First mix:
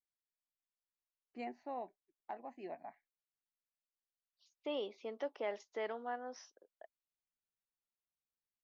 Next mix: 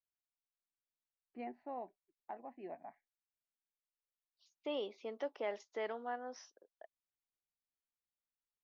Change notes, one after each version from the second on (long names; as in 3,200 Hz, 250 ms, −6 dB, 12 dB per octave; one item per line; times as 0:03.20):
first voice: add high-frequency loss of the air 380 metres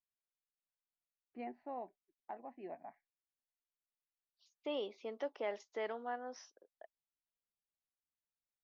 nothing changed